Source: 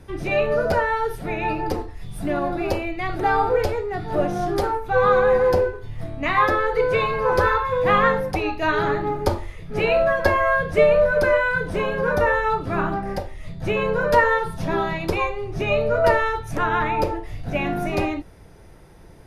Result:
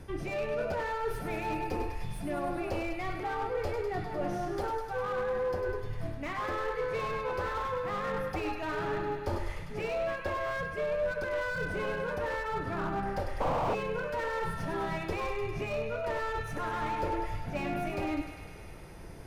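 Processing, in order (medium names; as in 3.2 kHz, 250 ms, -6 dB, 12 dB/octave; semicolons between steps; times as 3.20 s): reverse; compression 10:1, threshold -30 dBFS, peak gain reduction 19 dB; reverse; band-stop 3.8 kHz, Q 16; thinning echo 101 ms, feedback 79%, high-pass 630 Hz, level -8 dB; painted sound noise, 13.40–13.75 s, 460–1200 Hz -25 dBFS; slew-rate limiter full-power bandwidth 30 Hz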